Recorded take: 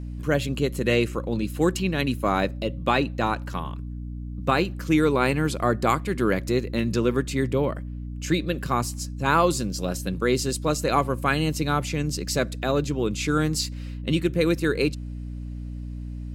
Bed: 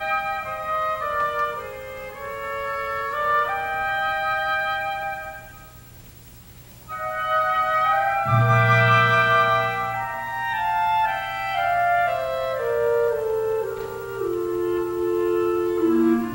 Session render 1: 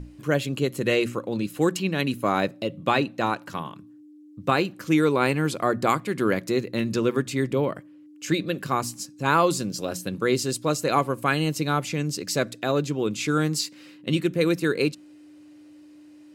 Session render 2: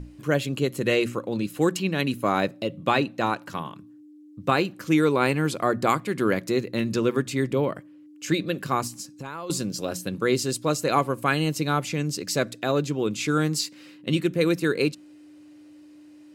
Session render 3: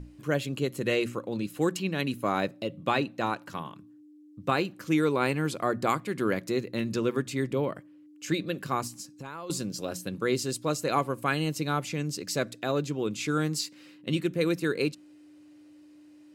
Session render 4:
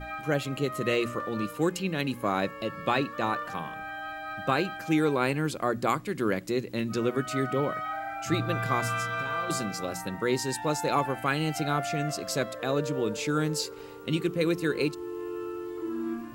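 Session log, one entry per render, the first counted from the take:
notches 60/120/180/240 Hz
8.87–9.5 compressor 10:1, threshold -31 dBFS
gain -4.5 dB
add bed -14 dB

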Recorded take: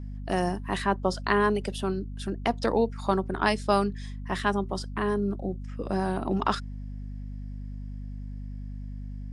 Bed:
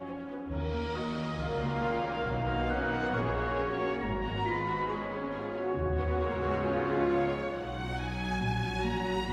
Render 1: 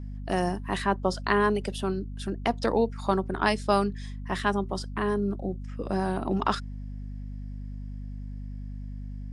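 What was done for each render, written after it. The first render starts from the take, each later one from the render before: nothing audible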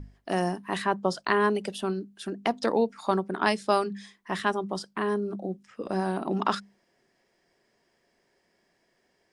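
notches 50/100/150/200/250 Hz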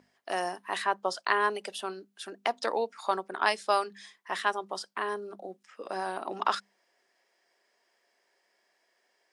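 HPF 590 Hz 12 dB/oct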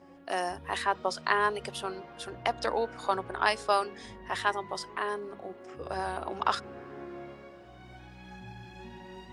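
add bed -15 dB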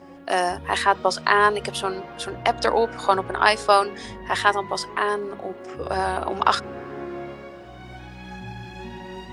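gain +9.5 dB; limiter -3 dBFS, peak gain reduction 2.5 dB

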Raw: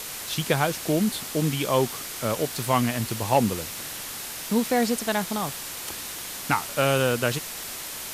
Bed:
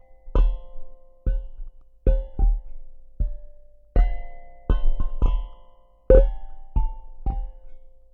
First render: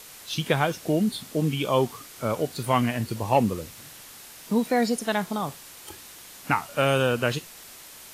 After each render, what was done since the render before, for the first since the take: noise print and reduce 10 dB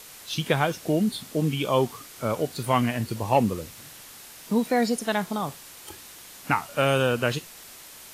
nothing audible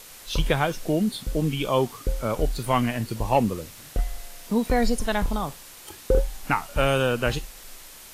add bed -7 dB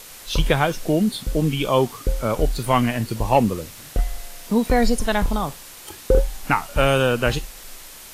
gain +4 dB

